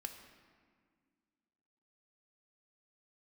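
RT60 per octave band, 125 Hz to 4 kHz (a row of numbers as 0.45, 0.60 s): 2.1, 2.7, 2.0, 1.8, 1.7, 1.2 s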